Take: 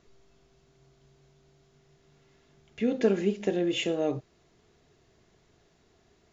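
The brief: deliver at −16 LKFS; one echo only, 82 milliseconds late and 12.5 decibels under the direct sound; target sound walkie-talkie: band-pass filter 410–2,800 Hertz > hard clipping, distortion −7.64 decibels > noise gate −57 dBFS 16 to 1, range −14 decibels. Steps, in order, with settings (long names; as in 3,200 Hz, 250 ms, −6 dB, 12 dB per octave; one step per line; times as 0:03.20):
band-pass filter 410–2,800 Hz
single-tap delay 82 ms −12.5 dB
hard clipping −29.5 dBFS
noise gate −57 dBFS 16 to 1, range −14 dB
level +19 dB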